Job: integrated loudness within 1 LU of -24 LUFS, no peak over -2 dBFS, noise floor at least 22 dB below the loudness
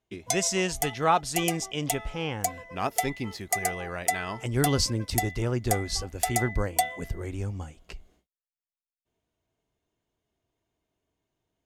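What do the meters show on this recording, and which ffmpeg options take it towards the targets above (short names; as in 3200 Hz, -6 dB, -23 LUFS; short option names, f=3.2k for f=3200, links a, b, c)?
loudness -28.0 LUFS; peak -8.5 dBFS; loudness target -24.0 LUFS
-> -af "volume=4dB"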